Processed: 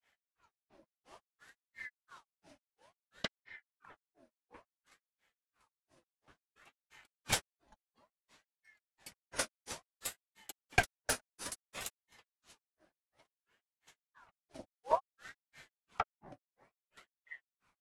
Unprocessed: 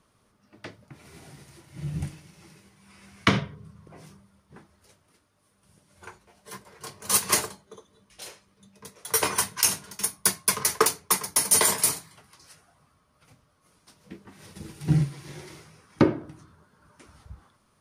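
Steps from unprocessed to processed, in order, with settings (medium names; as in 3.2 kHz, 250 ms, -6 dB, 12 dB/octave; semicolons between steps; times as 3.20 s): Bessel low-pass 7.6 kHz, order 2; granulator 181 ms, grains 2.9 per s, spray 28 ms, pitch spread up and down by 0 st; ring modulator with a swept carrier 1.2 kHz, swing 65%, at 0.58 Hz; trim -3.5 dB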